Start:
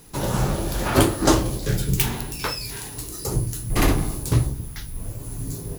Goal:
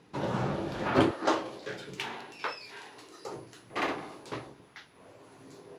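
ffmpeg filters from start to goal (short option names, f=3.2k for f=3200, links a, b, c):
-af "asetnsamples=n=441:p=0,asendcmd='1.11 highpass f 480',highpass=160,lowpass=3k,volume=-5dB"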